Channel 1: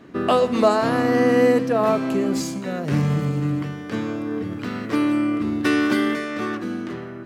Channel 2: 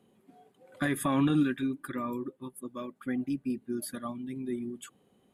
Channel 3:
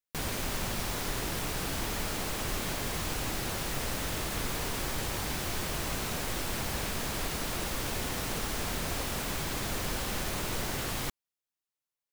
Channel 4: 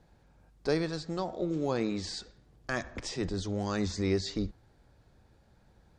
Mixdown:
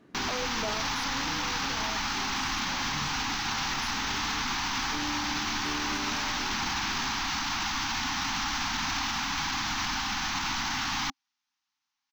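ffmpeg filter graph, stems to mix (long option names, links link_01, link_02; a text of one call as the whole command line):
ffmpeg -i stem1.wav -i stem2.wav -i stem3.wav -i stem4.wav -filter_complex "[0:a]volume=-12.5dB[link_01];[1:a]volume=-12dB,asplit=2[link_02][link_03];[2:a]firequalizer=gain_entry='entry(150,0);entry(270,10);entry(480,-26);entry(800,14);entry(1900,12);entry(6100,13);entry(9600,-28);entry(14000,-7)':delay=0.05:min_phase=1,volume=-0.5dB[link_04];[3:a]highpass=620,volume=-7.5dB[link_05];[link_03]apad=whole_len=319848[link_06];[link_01][link_06]sidechaincompress=threshold=-51dB:ratio=8:attack=16:release=390[link_07];[link_07][link_02][link_04][link_05]amix=inputs=4:normalize=0,alimiter=limit=-22dB:level=0:latency=1:release=13" out.wav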